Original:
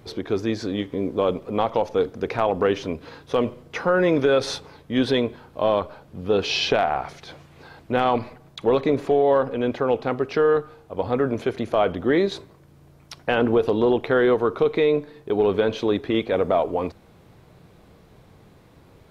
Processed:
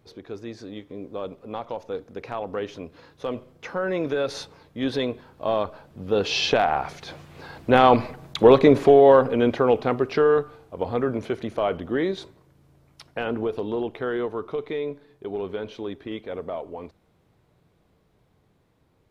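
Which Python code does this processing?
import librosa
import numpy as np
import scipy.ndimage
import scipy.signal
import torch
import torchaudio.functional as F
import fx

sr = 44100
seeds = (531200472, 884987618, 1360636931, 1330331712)

y = fx.doppler_pass(x, sr, speed_mps=10, closest_m=10.0, pass_at_s=8.38)
y = y * 10.0 ** (6.5 / 20.0)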